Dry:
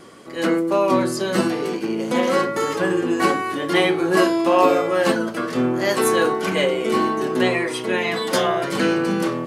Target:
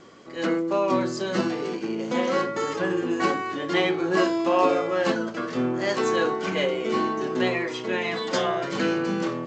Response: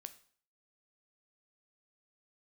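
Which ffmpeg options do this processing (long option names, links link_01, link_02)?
-af "volume=-5dB" -ar 16000 -c:a g722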